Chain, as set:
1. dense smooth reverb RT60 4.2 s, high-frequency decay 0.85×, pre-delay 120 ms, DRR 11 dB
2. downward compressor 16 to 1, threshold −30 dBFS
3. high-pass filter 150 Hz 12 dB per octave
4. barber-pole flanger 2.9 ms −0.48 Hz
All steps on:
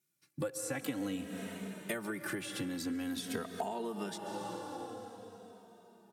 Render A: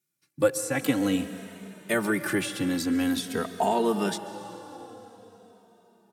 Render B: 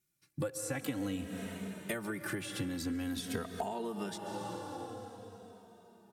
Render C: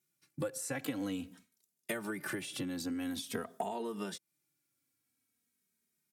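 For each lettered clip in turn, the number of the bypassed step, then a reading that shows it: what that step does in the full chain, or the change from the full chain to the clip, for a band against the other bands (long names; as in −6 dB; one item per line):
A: 2, average gain reduction 6.5 dB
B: 3, 125 Hz band +4.0 dB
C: 1, change in momentary loudness spread −8 LU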